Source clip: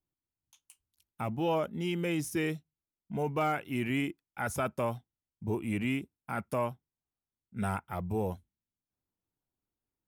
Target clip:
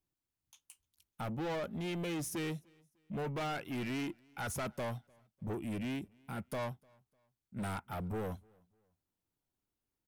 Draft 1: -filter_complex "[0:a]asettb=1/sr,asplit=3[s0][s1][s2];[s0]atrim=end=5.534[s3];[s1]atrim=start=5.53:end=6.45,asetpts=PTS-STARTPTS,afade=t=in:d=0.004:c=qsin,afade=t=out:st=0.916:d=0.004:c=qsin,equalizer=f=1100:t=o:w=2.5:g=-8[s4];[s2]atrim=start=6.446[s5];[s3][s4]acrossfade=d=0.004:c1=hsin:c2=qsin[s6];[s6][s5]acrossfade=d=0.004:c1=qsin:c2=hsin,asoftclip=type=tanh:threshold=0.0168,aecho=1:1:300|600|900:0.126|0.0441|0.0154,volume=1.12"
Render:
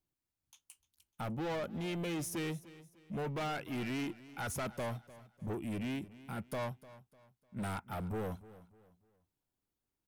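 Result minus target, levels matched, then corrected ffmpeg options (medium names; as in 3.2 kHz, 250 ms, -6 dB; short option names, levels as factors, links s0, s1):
echo-to-direct +11 dB
-filter_complex "[0:a]asettb=1/sr,asplit=3[s0][s1][s2];[s0]atrim=end=5.534[s3];[s1]atrim=start=5.53:end=6.45,asetpts=PTS-STARTPTS,afade=t=in:d=0.004:c=qsin,afade=t=out:st=0.916:d=0.004:c=qsin,equalizer=f=1100:t=o:w=2.5:g=-8[s4];[s2]atrim=start=6.446[s5];[s3][s4]acrossfade=d=0.004:c1=hsin:c2=qsin[s6];[s6][s5]acrossfade=d=0.004:c1=qsin:c2=hsin,asoftclip=type=tanh:threshold=0.0168,aecho=1:1:300|600:0.0355|0.0124,volume=1.12"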